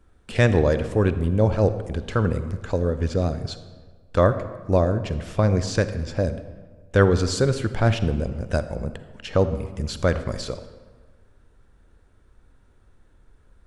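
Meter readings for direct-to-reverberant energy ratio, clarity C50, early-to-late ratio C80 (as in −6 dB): 11.0 dB, 11.5 dB, 13.0 dB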